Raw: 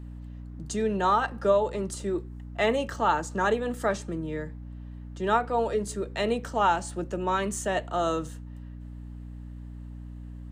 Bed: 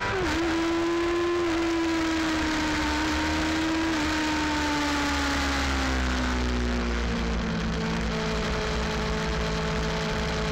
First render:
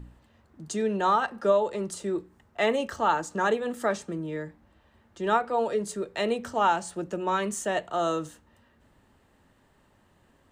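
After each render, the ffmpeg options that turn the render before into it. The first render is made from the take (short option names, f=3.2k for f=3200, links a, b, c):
-af "bandreject=f=60:t=h:w=4,bandreject=f=120:t=h:w=4,bandreject=f=180:t=h:w=4,bandreject=f=240:t=h:w=4,bandreject=f=300:t=h:w=4"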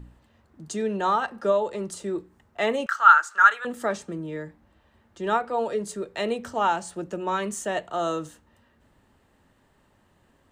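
-filter_complex "[0:a]asettb=1/sr,asplit=3[a][b][c];[a]atrim=end=2.864[d];[b]atrim=start=2.86:end=3.65,asetpts=PTS-STARTPTS,afade=t=in:d=0.004:c=qsin,afade=t=out:st=0.786:d=0.004:c=qsin,highpass=f=1.4k:t=q:w=10[e];[c]atrim=start=3.646[f];[d][e]acrossfade=d=0.004:c1=hsin:c2=qsin[g];[g][f]acrossfade=d=0.004:c1=qsin:c2=hsin"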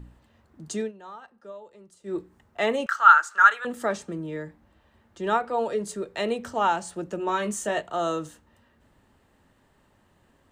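-filter_complex "[0:a]asettb=1/sr,asplit=3[a][b][c];[a]atrim=end=7.174[d];[b]atrim=start=7.17:end=7.82,asetpts=PTS-STARTPTS,afade=t=in:d=0.004:c=qsin,afade=t=out:st=0.646:d=0.004:c=qsin,asplit=2[e][f];[f]adelay=19,volume=-6.5dB[g];[e][g]amix=inputs=2:normalize=0,atrim=end_sample=28665[h];[c]atrim=start=7.816[i];[d][h]acrossfade=d=0.004:c1=hsin:c2=qsin[j];[j][i]acrossfade=d=0.004:c1=qsin:c2=hsin,asplit=3[k][l][m];[k]atrim=end=0.92,asetpts=PTS-STARTPTS,afade=t=out:st=0.8:d=0.12:silence=0.105925[n];[l]atrim=start=0.92:end=2.03,asetpts=PTS-STARTPTS,volume=-19.5dB[o];[m]atrim=start=2.03,asetpts=PTS-STARTPTS,afade=t=in:d=0.12:silence=0.105925[p];[n][o][p]concat=n=3:v=0:a=1"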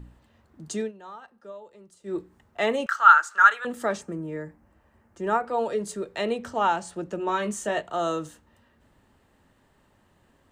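-filter_complex "[0:a]asettb=1/sr,asplit=3[a][b][c];[a]atrim=end=4.014[d];[b]atrim=start=4.01:end=5.47,asetpts=PTS-STARTPTS,afade=t=in:d=0.004:c=qsin,afade=t=out:st=1.456:d=0.004:c=qsin,equalizer=f=3.6k:t=o:w=0.75:g=-12.5[e];[c]atrim=start=5.466[f];[d][e]acrossfade=d=0.004:c1=hsin:c2=qsin[g];[g][f]acrossfade=d=0.004:c1=qsin:c2=hsin,asettb=1/sr,asplit=3[h][i][j];[h]atrim=end=6.184[k];[i]atrim=start=6.18:end=7.87,asetpts=PTS-STARTPTS,afade=t=in:d=0.004:c=qsin,afade=t=out:st=1.686:d=0.004:c=qsin,highshelf=f=8.1k:g=-5.5[l];[j]atrim=start=7.866[m];[k][l]acrossfade=d=0.004:c1=hsin:c2=qsin[n];[n][m]acrossfade=d=0.004:c1=qsin:c2=hsin"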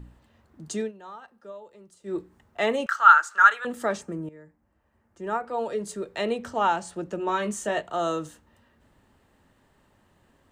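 -filter_complex "[0:a]asplit=2[a][b];[a]atrim=end=4.29,asetpts=PTS-STARTPTS,afade=t=out:st=4.286:d=0.004:c=hsin:silence=0.158489[c];[b]atrim=start=4.29,asetpts=PTS-STARTPTS,afade=t=in:d=1.93:silence=0.158489[d];[c][d]concat=n=2:v=0:a=1"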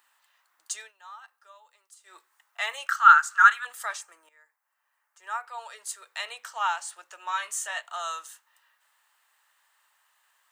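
-af "highpass=f=1k:w=0.5412,highpass=f=1k:w=1.3066,highshelf=f=8.4k:g=11"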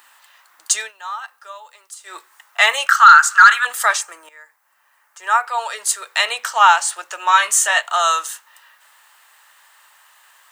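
-af "acontrast=86,alimiter=level_in=9.5dB:limit=-1dB:release=50:level=0:latency=1"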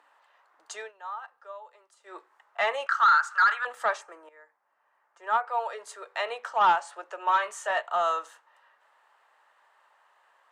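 -af "bandpass=f=450:t=q:w=1.2:csg=0,asoftclip=type=tanh:threshold=-13.5dB"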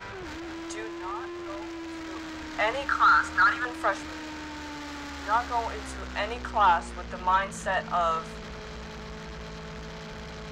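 -filter_complex "[1:a]volume=-12.5dB[a];[0:a][a]amix=inputs=2:normalize=0"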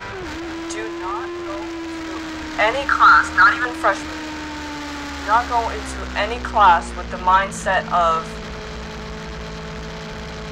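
-af "volume=9dB"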